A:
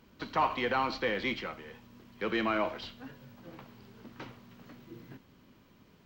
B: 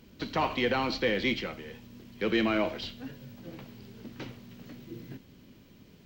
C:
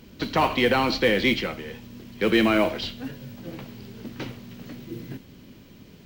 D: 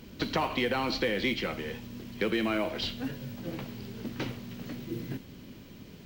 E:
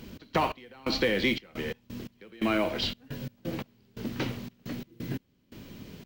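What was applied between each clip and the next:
peaking EQ 1.1 kHz -10 dB 1.4 oct; trim +6.5 dB
modulation noise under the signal 29 dB; trim +7 dB
compression 4:1, threshold -27 dBFS, peak gain reduction 10.5 dB
trance gate "x.x..xxx." 87 bpm -24 dB; trim +3 dB

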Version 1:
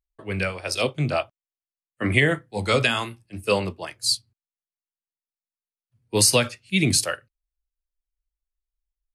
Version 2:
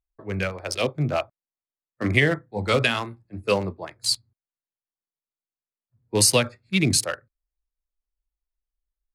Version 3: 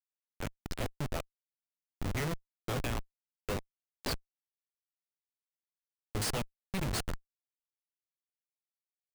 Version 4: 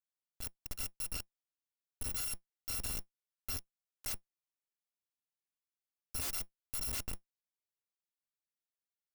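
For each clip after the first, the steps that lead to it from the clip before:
local Wiener filter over 15 samples
Schmitt trigger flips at -19.5 dBFS; trim -5.5 dB
bit-reversed sample order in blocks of 256 samples; trim -4.5 dB

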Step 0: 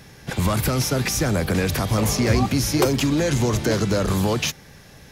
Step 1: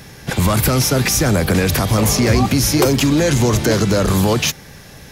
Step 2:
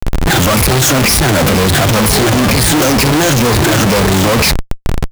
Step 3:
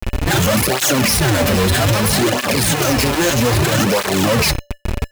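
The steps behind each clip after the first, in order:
in parallel at +1.5 dB: peak limiter -14.5 dBFS, peak gain reduction 7.5 dB; on the sum: treble shelf 9.2 kHz +4 dB
drifting ripple filter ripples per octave 0.88, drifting -2.1 Hz, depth 18 dB; Chebyshev shaper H 5 -15 dB, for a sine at 1.5 dBFS; Schmitt trigger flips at -21 dBFS; trim -1 dB
rattle on loud lows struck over -24 dBFS, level -16 dBFS; feedback comb 580 Hz, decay 0.25 s, harmonics odd, mix 70%; cancelling through-zero flanger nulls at 0.62 Hz, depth 7.4 ms; trim +8 dB

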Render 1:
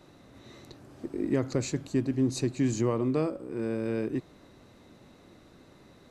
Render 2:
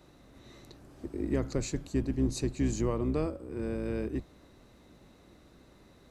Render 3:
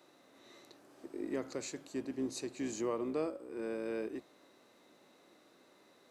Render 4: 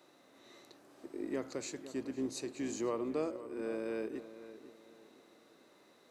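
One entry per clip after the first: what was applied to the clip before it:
octave divider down 2 oct, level -3 dB; treble shelf 9.4 kHz +5 dB; trim -3.5 dB
high-pass 370 Hz 12 dB/octave; harmonic-percussive split percussive -5 dB
filtered feedback delay 504 ms, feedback 35%, low-pass 2.8 kHz, level -13.5 dB

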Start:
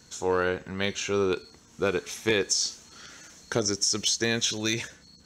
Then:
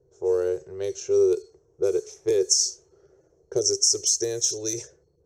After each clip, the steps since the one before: level-controlled noise filter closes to 670 Hz, open at -22.5 dBFS; FFT filter 150 Hz 0 dB, 230 Hz -29 dB, 380 Hz +14 dB, 930 Hz -8 dB, 1.4 kHz -11 dB, 2.3 kHz -13 dB, 3.8 kHz -10 dB, 5.7 kHz +12 dB; trim -5.5 dB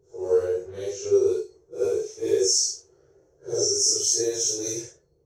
phase randomisation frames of 200 ms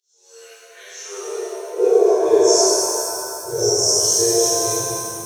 high-pass sweep 3.7 kHz -> 71 Hz, 0.24–3.04 s; pitch-shifted reverb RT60 2.5 s, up +7 st, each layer -8 dB, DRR -4.5 dB

